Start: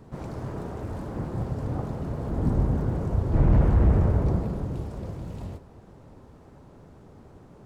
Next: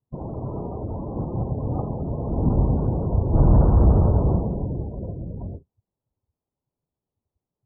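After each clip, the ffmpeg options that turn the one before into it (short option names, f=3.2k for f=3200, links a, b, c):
-af "agate=range=-10dB:threshold=-42dB:ratio=16:detection=peak,afftdn=nr=33:nf=-38,highshelf=f=1.5k:t=q:w=1.5:g=-13,volume=3.5dB"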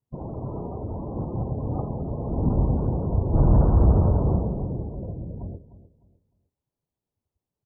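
-af "aecho=1:1:303|606|909:0.178|0.0498|0.0139,volume=-2dB"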